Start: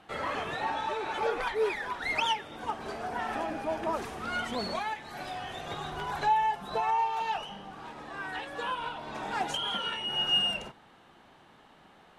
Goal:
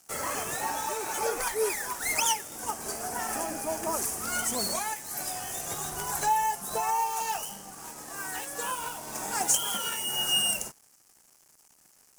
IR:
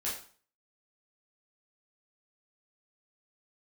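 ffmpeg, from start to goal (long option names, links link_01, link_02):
-af "aeval=exprs='sgn(val(0))*max(abs(val(0))-0.00188,0)':channel_layout=same,aexciter=amount=15.7:drive=5.3:freq=5600"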